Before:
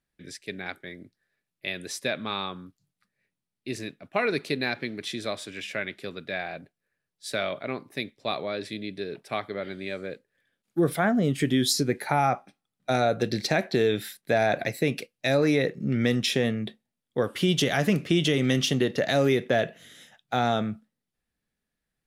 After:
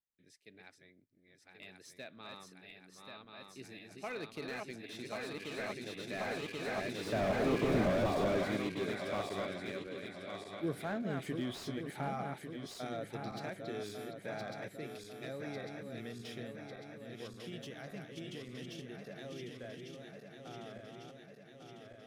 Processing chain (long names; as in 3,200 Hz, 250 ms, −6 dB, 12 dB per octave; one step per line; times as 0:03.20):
feedback delay that plays each chunk backwards 558 ms, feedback 83%, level −4.5 dB
source passing by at 0:07.76, 10 m/s, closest 2.5 metres
slew-rate limiting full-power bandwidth 9.2 Hz
level +7.5 dB